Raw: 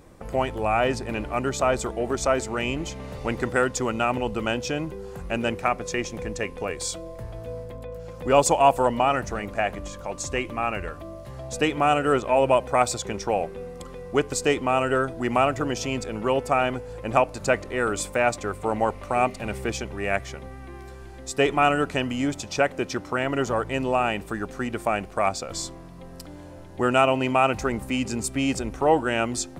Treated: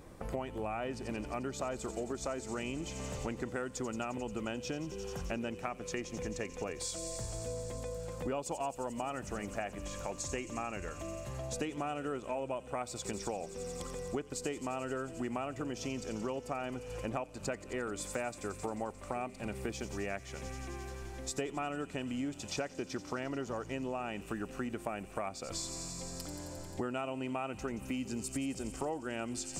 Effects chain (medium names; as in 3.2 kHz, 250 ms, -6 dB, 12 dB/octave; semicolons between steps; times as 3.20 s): on a send: feedback echo behind a high-pass 88 ms, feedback 85%, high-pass 5.2 kHz, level -7 dB; on the sum: dynamic bell 250 Hz, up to +5 dB, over -36 dBFS, Q 0.85; compression 6:1, threshold -33 dBFS, peak gain reduction 20.5 dB; trim -2.5 dB